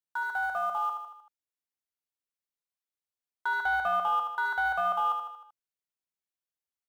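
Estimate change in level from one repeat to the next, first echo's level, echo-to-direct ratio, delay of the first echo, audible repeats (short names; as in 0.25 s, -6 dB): -5.5 dB, -6.0 dB, -4.5 dB, 77 ms, 5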